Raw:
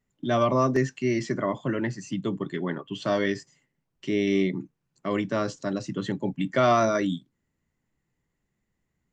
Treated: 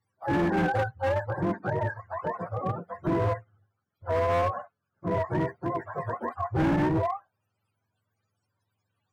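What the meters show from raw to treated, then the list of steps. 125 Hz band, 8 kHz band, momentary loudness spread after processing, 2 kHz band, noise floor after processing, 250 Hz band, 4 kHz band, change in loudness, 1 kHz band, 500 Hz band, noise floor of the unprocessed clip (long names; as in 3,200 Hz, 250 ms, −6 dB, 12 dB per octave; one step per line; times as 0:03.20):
+1.5 dB, can't be measured, 9 LU, −1.0 dB, −82 dBFS, −3.5 dB, −10.0 dB, −2.0 dB, 0.0 dB, −3.0 dB, −80 dBFS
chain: frequency axis turned over on the octave scale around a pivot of 450 Hz
hard clipping −23 dBFS, distortion −9 dB
level +1.5 dB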